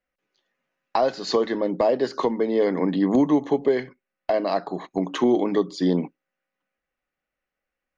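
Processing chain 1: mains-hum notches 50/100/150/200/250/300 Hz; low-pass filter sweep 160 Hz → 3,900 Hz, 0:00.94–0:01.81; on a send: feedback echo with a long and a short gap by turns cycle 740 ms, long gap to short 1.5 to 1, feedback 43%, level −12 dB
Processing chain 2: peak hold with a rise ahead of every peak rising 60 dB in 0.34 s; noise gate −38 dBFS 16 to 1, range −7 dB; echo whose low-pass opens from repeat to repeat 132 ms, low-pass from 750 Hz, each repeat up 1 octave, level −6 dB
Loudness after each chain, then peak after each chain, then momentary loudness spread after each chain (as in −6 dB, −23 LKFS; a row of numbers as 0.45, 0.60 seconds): −23.5, −21.5 LKFS; −5.0, −7.0 dBFS; 16, 10 LU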